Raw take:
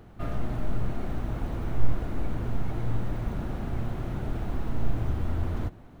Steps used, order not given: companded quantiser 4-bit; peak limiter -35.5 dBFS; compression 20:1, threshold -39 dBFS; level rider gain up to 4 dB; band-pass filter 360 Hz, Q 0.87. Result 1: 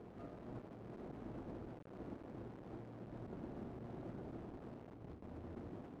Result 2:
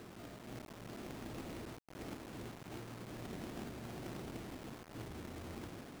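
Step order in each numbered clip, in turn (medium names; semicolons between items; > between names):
level rider > companded quantiser > peak limiter > band-pass filter > compression; peak limiter > compression > band-pass filter > companded quantiser > level rider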